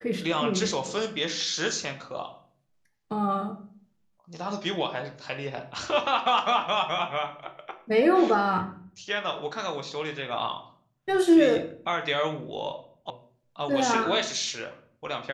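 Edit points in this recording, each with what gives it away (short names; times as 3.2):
13.1 sound cut off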